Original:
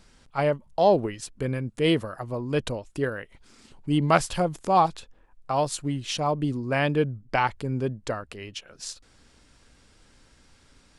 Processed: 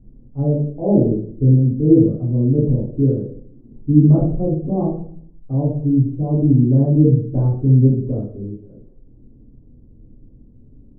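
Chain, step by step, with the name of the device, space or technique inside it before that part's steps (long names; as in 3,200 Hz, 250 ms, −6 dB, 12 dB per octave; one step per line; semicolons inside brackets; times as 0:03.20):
next room (low-pass filter 390 Hz 24 dB per octave; convolution reverb RT60 0.55 s, pre-delay 3 ms, DRR −8.5 dB)
level +3.5 dB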